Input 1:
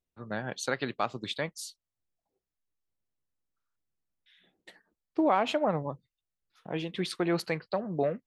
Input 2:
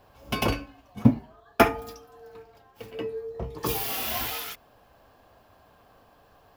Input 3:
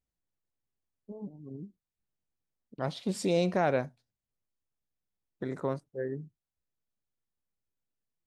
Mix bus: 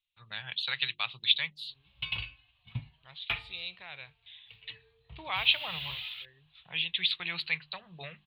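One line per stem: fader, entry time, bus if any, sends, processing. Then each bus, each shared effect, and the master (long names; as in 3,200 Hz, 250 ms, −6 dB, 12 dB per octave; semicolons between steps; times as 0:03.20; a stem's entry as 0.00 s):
−0.5 dB, 0.00 s, no send, low-shelf EQ 210 Hz −11.5 dB; mains-hum notches 50/100/150/200/250/300/350 Hz
−13.5 dB, 1.70 s, no send, no processing
−10.5 dB, 0.25 s, no send, parametric band 160 Hz −14 dB 1.1 octaves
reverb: not used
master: drawn EQ curve 150 Hz 0 dB, 250 Hz −24 dB, 380 Hz −21 dB, 600 Hz −19 dB, 950 Hz −7 dB, 1,500 Hz −6 dB, 2,600 Hz +13 dB, 3,900 Hz +14 dB, 5,900 Hz −30 dB, 13,000 Hz −17 dB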